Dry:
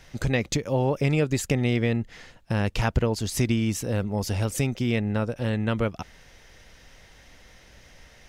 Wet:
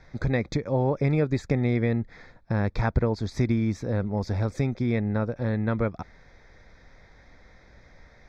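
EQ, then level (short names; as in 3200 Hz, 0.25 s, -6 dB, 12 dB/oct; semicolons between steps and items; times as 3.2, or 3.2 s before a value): Butterworth band-stop 2900 Hz, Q 2.6; air absorption 210 m; 0.0 dB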